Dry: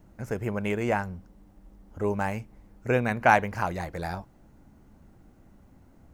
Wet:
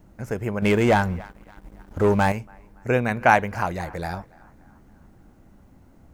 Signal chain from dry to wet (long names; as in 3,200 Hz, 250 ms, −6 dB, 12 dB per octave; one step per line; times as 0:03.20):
feedback echo with a band-pass in the loop 283 ms, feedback 55%, band-pass 1,200 Hz, level −22 dB
0:00.62–0:02.32: leveller curve on the samples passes 2
level +3 dB